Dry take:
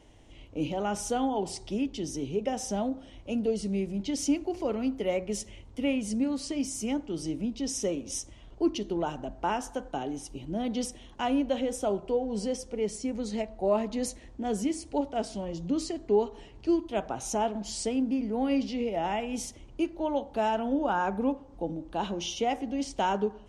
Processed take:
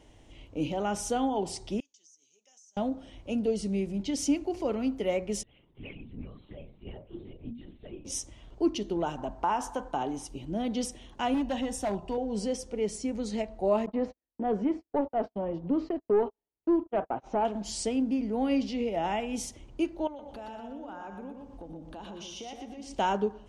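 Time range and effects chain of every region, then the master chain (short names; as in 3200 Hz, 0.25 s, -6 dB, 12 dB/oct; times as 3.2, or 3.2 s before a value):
1.8–2.77 band-pass 6500 Hz, Q 7 + compressor 10:1, threshold -55 dBFS
5.43–8.05 metallic resonator 69 Hz, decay 0.61 s, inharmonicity 0.03 + LPC vocoder at 8 kHz whisper
9.18–10.27 bell 990 Hz +10.5 dB 0.64 oct + compressor 2.5:1, threshold -25 dBFS
11.34–12.18 comb 1.1 ms, depth 56% + overloaded stage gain 25 dB
13.86–17.45 gate -38 dBFS, range -47 dB + overdrive pedal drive 17 dB, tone 1300 Hz, clips at -14.5 dBFS + tape spacing loss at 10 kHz 39 dB
20.07–22.95 compressor 5:1, threshold -41 dBFS + feedback echo 0.12 s, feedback 36%, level -5 dB
whole clip: dry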